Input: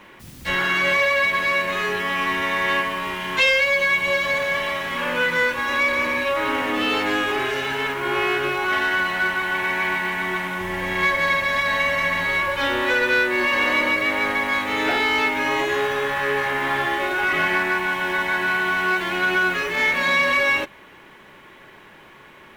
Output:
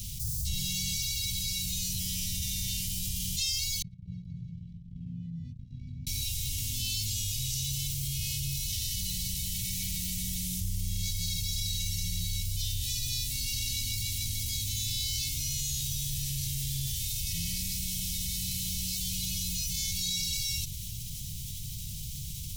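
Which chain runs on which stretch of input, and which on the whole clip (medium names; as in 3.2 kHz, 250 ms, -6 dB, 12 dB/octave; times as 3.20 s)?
3.82–6.07 s: ladder band-pass 210 Hz, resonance 25% + gate -46 dBFS, range -34 dB
whole clip: inverse Chebyshev band-stop 420–1600 Hz, stop band 70 dB; peaking EQ 310 Hz -13 dB 0.56 oct; level flattener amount 70%; trim +4.5 dB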